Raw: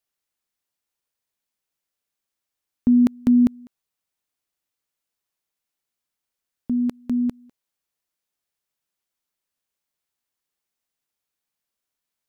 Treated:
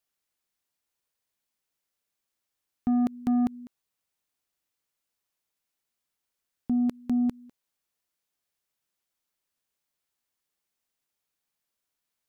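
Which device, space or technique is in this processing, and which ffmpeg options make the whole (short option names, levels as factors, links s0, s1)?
soft clipper into limiter: -af "asoftclip=type=tanh:threshold=0.141,alimiter=limit=0.0891:level=0:latency=1:release=73"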